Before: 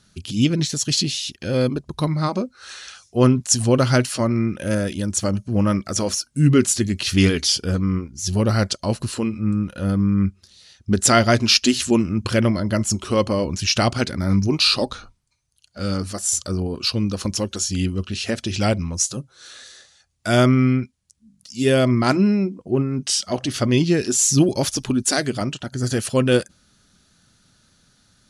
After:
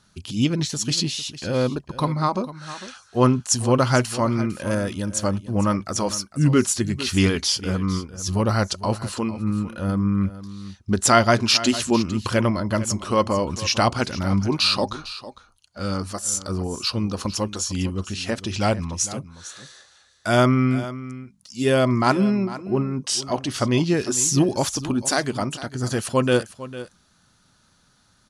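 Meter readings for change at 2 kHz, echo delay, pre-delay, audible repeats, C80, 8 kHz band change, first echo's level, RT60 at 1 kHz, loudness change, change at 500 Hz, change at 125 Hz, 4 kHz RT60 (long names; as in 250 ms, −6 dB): −1.0 dB, 453 ms, no reverb audible, 1, no reverb audible, −3.0 dB, −15.0 dB, no reverb audible, −2.0 dB, −1.0 dB, −3.0 dB, no reverb audible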